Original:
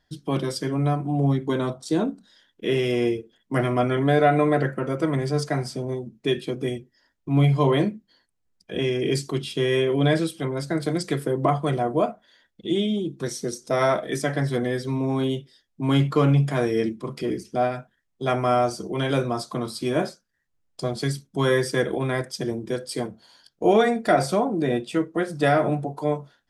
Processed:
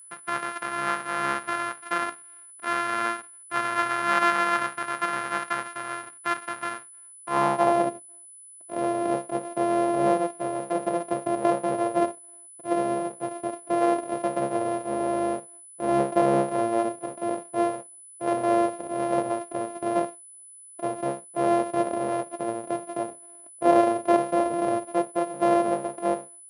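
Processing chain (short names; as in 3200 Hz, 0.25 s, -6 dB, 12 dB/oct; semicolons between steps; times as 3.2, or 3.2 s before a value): sample sorter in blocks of 128 samples; band-pass sweep 1400 Hz -> 580 Hz, 7.01–7.93; whine 10000 Hz -51 dBFS; gain +6 dB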